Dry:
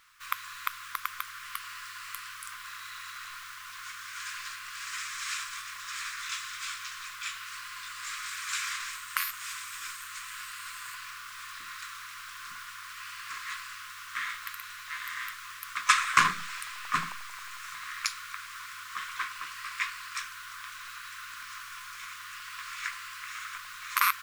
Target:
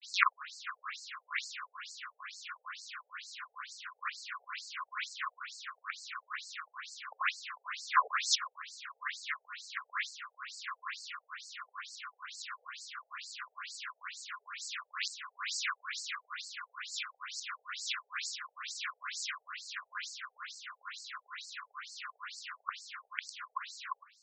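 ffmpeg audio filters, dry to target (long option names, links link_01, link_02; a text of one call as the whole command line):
ffmpeg -i in.wav -af "areverse,afftfilt=real='re*between(b*sr/1024,580*pow(6000/580,0.5+0.5*sin(2*PI*2.2*pts/sr))/1.41,580*pow(6000/580,0.5+0.5*sin(2*PI*2.2*pts/sr))*1.41)':imag='im*between(b*sr/1024,580*pow(6000/580,0.5+0.5*sin(2*PI*2.2*pts/sr))/1.41,580*pow(6000/580,0.5+0.5*sin(2*PI*2.2*pts/sr))*1.41)':win_size=1024:overlap=0.75,volume=3.5dB" out.wav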